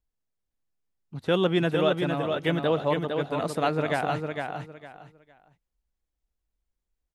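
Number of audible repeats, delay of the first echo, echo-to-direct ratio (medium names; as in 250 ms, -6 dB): 3, 457 ms, -5.0 dB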